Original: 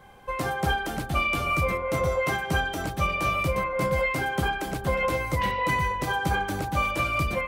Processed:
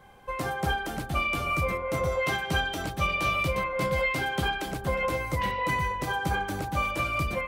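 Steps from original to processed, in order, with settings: 2.11–4.72 dynamic EQ 3500 Hz, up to +6 dB, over -43 dBFS, Q 1.1; gain -2.5 dB

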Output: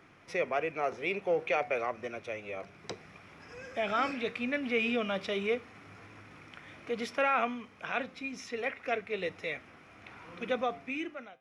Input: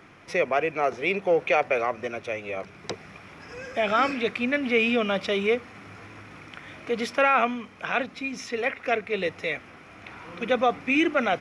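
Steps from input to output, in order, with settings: ending faded out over 0.95 s; flange 0.67 Hz, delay 7.1 ms, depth 1.8 ms, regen -86%; gain -3 dB

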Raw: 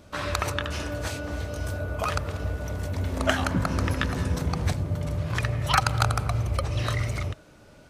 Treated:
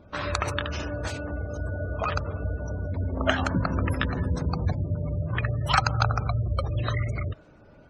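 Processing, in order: spectral gate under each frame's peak -25 dB strong; mismatched tape noise reduction decoder only

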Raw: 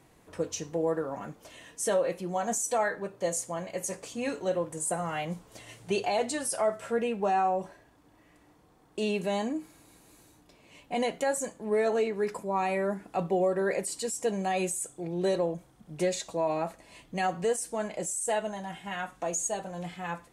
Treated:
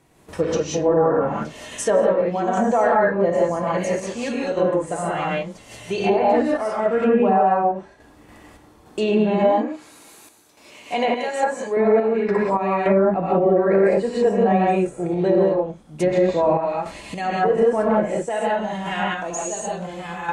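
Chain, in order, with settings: non-linear reverb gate 0.21 s rising, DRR -5 dB; random-step tremolo, depth 70%; 9.51–11.77 HPF 530 Hz 6 dB/oct; treble ducked by the level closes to 1500 Hz, closed at -24.5 dBFS; maximiser +18 dB; gain -7.5 dB

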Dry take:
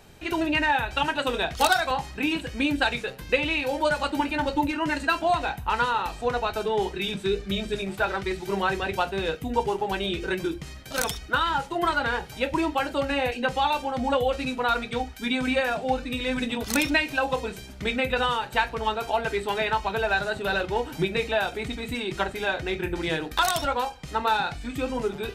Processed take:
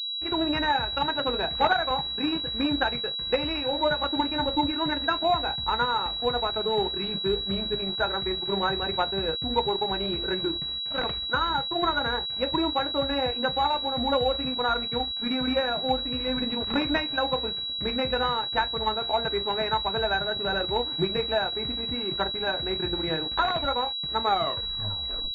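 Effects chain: tape stop at the end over 1.13 s; crossover distortion -42 dBFS; pulse-width modulation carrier 3900 Hz

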